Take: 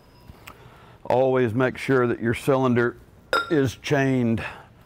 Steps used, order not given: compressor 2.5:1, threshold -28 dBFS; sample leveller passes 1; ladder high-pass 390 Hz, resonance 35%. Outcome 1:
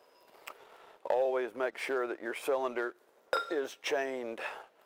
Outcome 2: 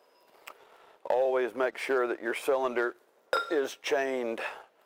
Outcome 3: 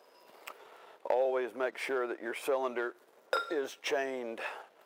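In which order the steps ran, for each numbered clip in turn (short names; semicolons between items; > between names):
compressor > ladder high-pass > sample leveller; ladder high-pass > compressor > sample leveller; compressor > sample leveller > ladder high-pass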